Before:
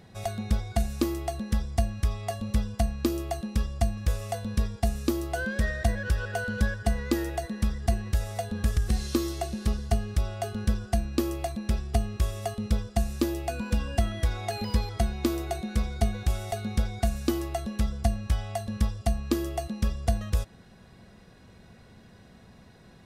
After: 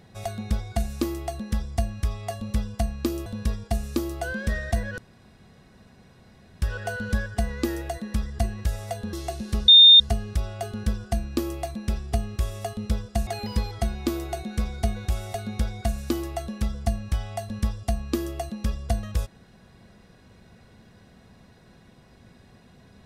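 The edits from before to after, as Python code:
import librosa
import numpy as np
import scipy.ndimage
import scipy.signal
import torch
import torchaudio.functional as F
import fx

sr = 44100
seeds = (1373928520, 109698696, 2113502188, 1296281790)

y = fx.edit(x, sr, fx.cut(start_s=3.26, length_s=1.12),
    fx.insert_room_tone(at_s=6.1, length_s=1.64),
    fx.cut(start_s=8.61, length_s=0.65),
    fx.insert_tone(at_s=9.81, length_s=0.32, hz=3640.0, db=-7.5),
    fx.cut(start_s=13.08, length_s=1.37), tone=tone)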